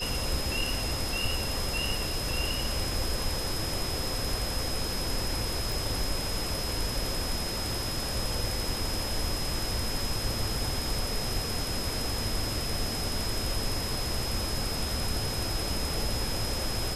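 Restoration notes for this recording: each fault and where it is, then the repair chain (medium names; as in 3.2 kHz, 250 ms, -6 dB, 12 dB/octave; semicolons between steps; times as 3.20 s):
whine 5.1 kHz -35 dBFS
5.72 s: pop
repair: de-click; band-stop 5.1 kHz, Q 30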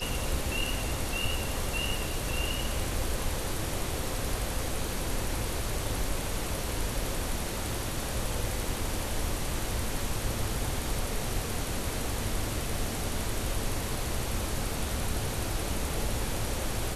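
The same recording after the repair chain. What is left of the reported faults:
nothing left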